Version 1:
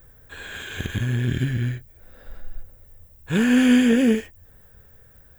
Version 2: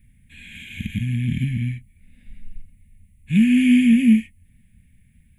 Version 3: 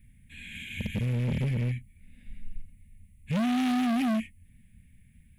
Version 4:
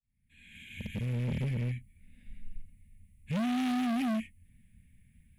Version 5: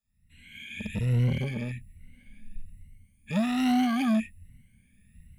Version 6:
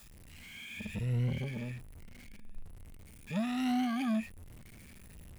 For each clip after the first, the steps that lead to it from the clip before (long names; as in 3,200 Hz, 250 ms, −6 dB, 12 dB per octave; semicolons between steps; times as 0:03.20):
drawn EQ curve 110 Hz 0 dB, 220 Hz +9 dB, 420 Hz −24 dB, 690 Hz −25 dB, 1,400 Hz −27 dB, 2,200 Hz +8 dB, 5,300 Hz −16 dB, 11,000 Hz +4 dB, 15,000 Hz −28 dB; level −1.5 dB
hard clipping −23 dBFS, distortion −5 dB; level −2 dB
fade in at the beginning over 1.16 s; level −4 dB
rippled gain that drifts along the octave scale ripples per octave 2, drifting +1.2 Hz, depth 16 dB; level +2.5 dB
converter with a step at zero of −40.5 dBFS; level −7.5 dB